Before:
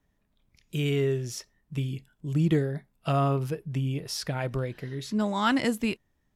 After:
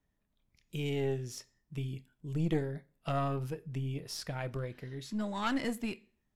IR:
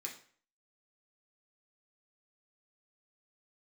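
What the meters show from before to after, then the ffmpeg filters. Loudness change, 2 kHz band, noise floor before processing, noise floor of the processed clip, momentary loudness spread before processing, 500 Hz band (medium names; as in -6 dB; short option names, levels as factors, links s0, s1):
-7.5 dB, -8.0 dB, -73 dBFS, -80 dBFS, 12 LU, -7.0 dB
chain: -filter_complex "[0:a]asplit=2[s0][s1];[1:a]atrim=start_sample=2205,adelay=26[s2];[s1][s2]afir=irnorm=-1:irlink=0,volume=0.178[s3];[s0][s3]amix=inputs=2:normalize=0,aeval=exprs='(tanh(6.31*val(0)+0.65)-tanh(0.65))/6.31':c=same,volume=0.631"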